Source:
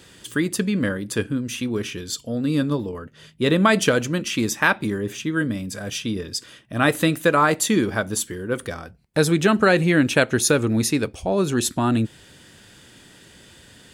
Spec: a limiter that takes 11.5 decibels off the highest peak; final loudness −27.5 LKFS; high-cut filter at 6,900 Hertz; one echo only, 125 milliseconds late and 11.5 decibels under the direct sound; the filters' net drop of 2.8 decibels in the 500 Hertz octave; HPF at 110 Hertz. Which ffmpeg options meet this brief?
ffmpeg -i in.wav -af "highpass=110,lowpass=6900,equalizer=frequency=500:width_type=o:gain=-3.5,alimiter=limit=-14dB:level=0:latency=1,aecho=1:1:125:0.266,volume=-2dB" out.wav

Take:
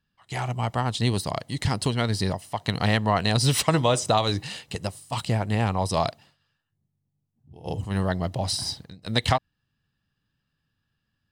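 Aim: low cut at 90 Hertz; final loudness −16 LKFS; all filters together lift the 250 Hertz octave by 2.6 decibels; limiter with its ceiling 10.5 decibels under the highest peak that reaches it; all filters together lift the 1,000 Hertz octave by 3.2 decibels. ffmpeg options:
ffmpeg -i in.wav -af "highpass=90,equalizer=frequency=250:width_type=o:gain=3.5,equalizer=frequency=1000:width_type=o:gain=4,volume=11.5dB,alimiter=limit=-2dB:level=0:latency=1" out.wav

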